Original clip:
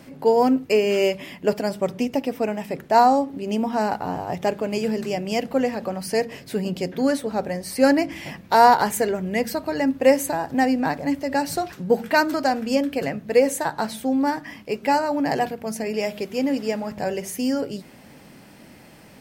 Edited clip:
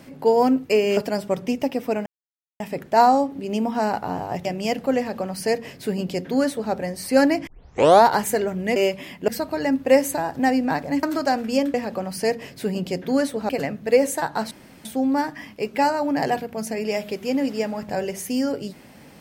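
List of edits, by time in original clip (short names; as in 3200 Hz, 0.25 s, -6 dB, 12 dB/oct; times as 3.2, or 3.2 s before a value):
0.97–1.49 move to 9.43
2.58 insert silence 0.54 s
4.43–5.12 cut
5.64–7.39 copy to 12.92
8.14 tape start 0.59 s
11.18–12.21 cut
13.94 insert room tone 0.34 s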